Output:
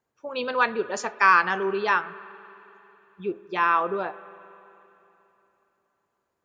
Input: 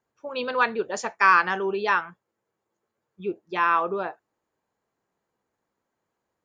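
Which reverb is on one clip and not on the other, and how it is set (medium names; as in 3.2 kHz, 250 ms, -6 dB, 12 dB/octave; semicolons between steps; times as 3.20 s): spring tank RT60 3.3 s, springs 46/58 ms, chirp 65 ms, DRR 16.5 dB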